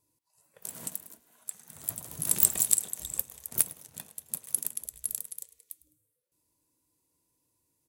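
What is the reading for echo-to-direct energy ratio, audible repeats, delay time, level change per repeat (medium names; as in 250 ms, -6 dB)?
-20.0 dB, 2, 104 ms, -10.0 dB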